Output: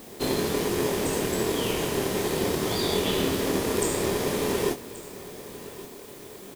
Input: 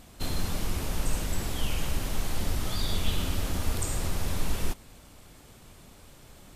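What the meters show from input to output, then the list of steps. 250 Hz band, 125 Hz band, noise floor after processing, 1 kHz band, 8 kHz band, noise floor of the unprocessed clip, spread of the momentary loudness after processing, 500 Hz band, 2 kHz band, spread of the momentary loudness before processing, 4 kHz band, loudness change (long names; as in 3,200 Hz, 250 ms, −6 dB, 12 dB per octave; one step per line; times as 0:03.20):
+9.5 dB, −1.5 dB, −44 dBFS, +8.0 dB, +5.0 dB, −52 dBFS, 15 LU, +16.0 dB, +7.0 dB, 21 LU, +5.5 dB, +6.5 dB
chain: high-pass filter 200 Hz 12 dB per octave
parametric band 410 Hz +13.5 dB 0.45 octaves
in parallel at −3 dB: decimation without filtering 31×
on the sum: background noise blue −55 dBFS
double-tracking delay 26 ms −6.5 dB
single-tap delay 1,130 ms −17 dB
level +3.5 dB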